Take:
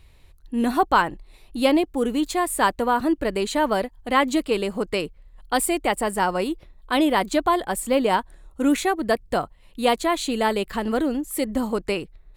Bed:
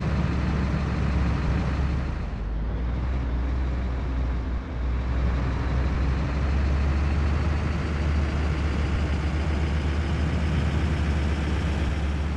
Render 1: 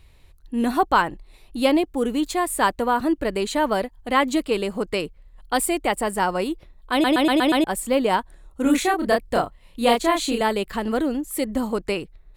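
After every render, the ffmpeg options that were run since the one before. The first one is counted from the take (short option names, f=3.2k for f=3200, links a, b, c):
-filter_complex "[0:a]asettb=1/sr,asplit=3[a][b][c];[a]atrim=end=8.624[d];[b]atrim=start=8.62:end=10.41,asetpts=PTS-STARTPTS,afade=t=in:d=0.004:c=qsin,afade=t=out:st=1.786:d=0.004:c=qsin,asplit=2[e][f];[f]adelay=30,volume=-2.5dB[g];[e][g]amix=inputs=2:normalize=0,atrim=end_sample=78939[h];[c]atrim=start=10.406[i];[d][h]acrossfade=d=0.004:c1=hsin:c2=qsin[j];[j][i]acrossfade=d=0.004:c1=qsin:c2=hsin,asplit=7[k][l][m][n][o][p][q];[k]atrim=end=7.042[r];[l]atrim=start=6.918:end=7.042[s];[m]atrim=start=6.918:end=7.042[t];[n]atrim=start=6.918:end=7.042[u];[o]atrim=start=6.918:end=7.042[v];[p]atrim=start=6.918:end=7.042[w];[q]atrim=start=7.638[x];[r][s]acrossfade=d=0.004:c1=hsin:c2=hsin[y];[y][t]acrossfade=d=0.004:c1=hsin:c2=hsin[z];[z][u]acrossfade=d=0.004:c1=hsin:c2=hsin[aa];[aa][v]acrossfade=d=0.004:c1=hsin:c2=hsin[ab];[ab][w]acrossfade=d=0.004:c1=hsin:c2=hsin[ac];[ac][x]acrossfade=d=0.004:c1=hsin:c2=hsin"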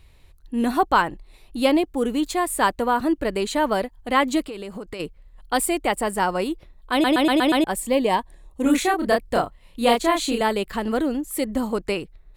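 -filter_complex "[0:a]asplit=3[a][b][c];[a]afade=t=out:st=4.45:d=0.02[d];[b]acompressor=threshold=-29dB:ratio=16:attack=3.2:release=140:knee=1:detection=peak,afade=t=in:st=4.45:d=0.02,afade=t=out:st=4.99:d=0.02[e];[c]afade=t=in:st=4.99:d=0.02[f];[d][e][f]amix=inputs=3:normalize=0,asettb=1/sr,asplit=3[g][h][i];[g]atrim=end=7.764[j];[h]atrim=start=7.76:end=8.66,asetpts=PTS-STARTPTS,afade=t=in:d=0.004:c=qsin,afade=t=out:st=0.896:d=0.004:c=qsin,asuperstop=centerf=1400:order=4:qfactor=3.6[k];[i]atrim=start=8.656[l];[j][k]acrossfade=d=0.004:c1=hsin:c2=qsin[m];[m][l]acrossfade=d=0.004:c1=qsin:c2=hsin"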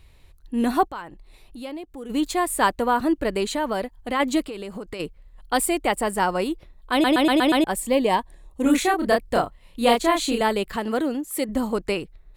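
-filter_complex "[0:a]asplit=3[a][b][c];[a]afade=t=out:st=0.87:d=0.02[d];[b]acompressor=threshold=-44dB:ratio=2:attack=3.2:release=140:knee=1:detection=peak,afade=t=in:st=0.87:d=0.02,afade=t=out:st=2.09:d=0.02[e];[c]afade=t=in:st=2.09:d=0.02[f];[d][e][f]amix=inputs=3:normalize=0,asplit=3[g][h][i];[g]afade=t=out:st=3.54:d=0.02[j];[h]acompressor=threshold=-23dB:ratio=2:attack=3.2:release=140:knee=1:detection=peak,afade=t=in:st=3.54:d=0.02,afade=t=out:st=4.19:d=0.02[k];[i]afade=t=in:st=4.19:d=0.02[l];[j][k][l]amix=inputs=3:normalize=0,asettb=1/sr,asplit=3[m][n][o];[m]atrim=end=10.764[p];[n]atrim=start=10.76:end=11.49,asetpts=PTS-STARTPTS,afade=t=in:d=0.004:c=qsin,afade=t=out:st=0.726:d=0.004:c=qsin,highpass=f=190:p=1[q];[o]atrim=start=11.486[r];[p][q]acrossfade=d=0.004:c1=hsin:c2=qsin[s];[s][r]acrossfade=d=0.004:c1=qsin:c2=hsin"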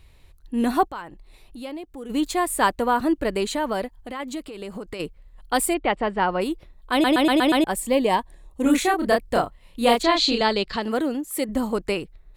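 -filter_complex "[0:a]asettb=1/sr,asplit=3[a][b][c];[a]atrim=end=3.994[d];[b]atrim=start=3.99:end=4.62,asetpts=PTS-STARTPTS,afade=t=in:d=0.004:c=qsin,afade=t=out:st=0.626:d=0.004:c=qsin,acompressor=threshold=-35dB:ratio=2:attack=3.2:release=140:knee=1:detection=peak[e];[c]atrim=start=4.616[f];[d][e]acrossfade=d=0.004:c1=hsin:c2=qsin[g];[g][f]acrossfade=d=0.004:c1=qsin:c2=hsin,asplit=3[h][i][j];[h]afade=t=out:st=5.73:d=0.02[k];[i]lowpass=f=3.7k:w=0.5412,lowpass=f=3.7k:w=1.3066,afade=t=in:st=5.73:d=0.02,afade=t=out:st=6.4:d=0.02[l];[j]afade=t=in:st=6.4:d=0.02[m];[k][l][m]amix=inputs=3:normalize=0,asettb=1/sr,asplit=3[n][o][p];[n]atrim=end=10.034[q];[o]atrim=start=10.03:end=10.83,asetpts=PTS-STARTPTS,afade=t=in:d=0.004:c=qsin,afade=t=out:st=0.796:d=0.004:c=qsin,lowpass=f=4.6k:t=q:w=3.5[r];[p]atrim=start=10.826[s];[q][r]acrossfade=d=0.004:c1=hsin:c2=qsin[t];[t][s]acrossfade=d=0.004:c1=qsin:c2=hsin"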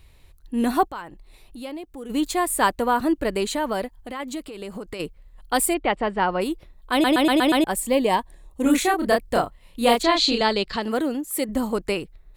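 -af "highshelf=f=8.9k:g=4.5"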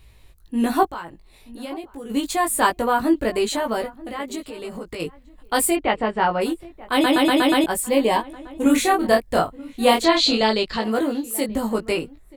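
-filter_complex "[0:a]asplit=2[a][b];[b]adelay=18,volume=-3dB[c];[a][c]amix=inputs=2:normalize=0,asplit=2[d][e];[e]adelay=932.9,volume=-20dB,highshelf=f=4k:g=-21[f];[d][f]amix=inputs=2:normalize=0"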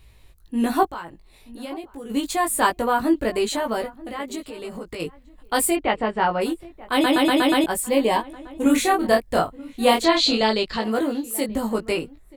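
-af "volume=-1dB"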